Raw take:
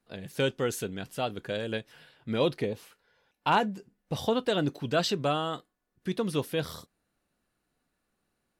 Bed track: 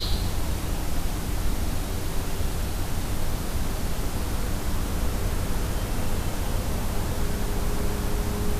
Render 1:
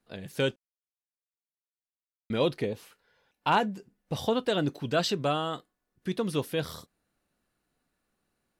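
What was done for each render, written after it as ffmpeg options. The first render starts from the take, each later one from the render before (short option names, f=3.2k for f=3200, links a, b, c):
-filter_complex "[0:a]asplit=3[a][b][c];[a]atrim=end=0.56,asetpts=PTS-STARTPTS,afade=t=out:st=0.556:d=0.004:c=hsin[d];[b]atrim=start=0.56:end=2.3,asetpts=PTS-STARTPTS,volume=0[e];[c]atrim=start=2.3,asetpts=PTS-STARTPTS,afade=t=in:d=0.004:c=hsin[f];[d][e][f]concat=n=3:v=0:a=1"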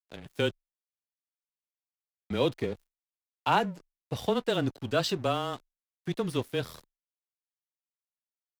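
-af "aeval=exprs='sgn(val(0))*max(abs(val(0))-0.00596,0)':c=same,afreqshift=-18"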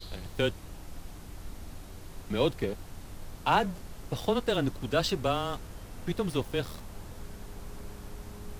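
-filter_complex "[1:a]volume=-16.5dB[a];[0:a][a]amix=inputs=2:normalize=0"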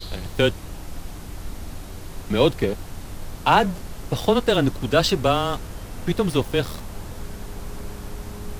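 -af "volume=9dB,alimiter=limit=-3dB:level=0:latency=1"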